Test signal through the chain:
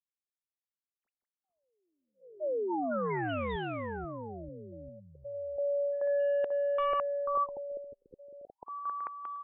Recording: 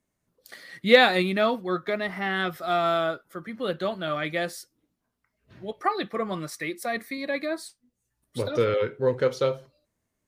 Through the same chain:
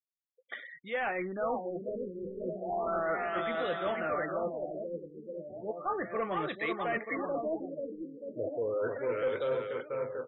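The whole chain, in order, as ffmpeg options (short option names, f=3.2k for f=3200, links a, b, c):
-filter_complex "[0:a]areverse,acompressor=threshold=-31dB:ratio=16,areverse,adynamicequalizer=threshold=0.00631:dfrequency=460:dqfactor=1.3:tfrequency=460:tqfactor=1.3:attack=5:release=100:ratio=0.375:range=1.5:mode=boostabove:tftype=bell,lowpass=7.1k,afftfilt=real='re*gte(hypot(re,im),0.00355)':imag='im*gte(hypot(re,im),0.00355)':win_size=1024:overlap=0.75,aecho=1:1:490|931|1328|1685|2007:0.631|0.398|0.251|0.158|0.1,asplit=2[a][b];[b]highpass=f=720:p=1,volume=16dB,asoftclip=type=tanh:threshold=-16dB[c];[a][c]amix=inputs=2:normalize=0,lowpass=f=4.1k:p=1,volume=-6dB,afftfilt=real='re*lt(b*sr/1024,540*pow(4000/540,0.5+0.5*sin(2*PI*0.34*pts/sr)))':imag='im*lt(b*sr/1024,540*pow(4000/540,0.5+0.5*sin(2*PI*0.34*pts/sr)))':win_size=1024:overlap=0.75,volume=-5dB"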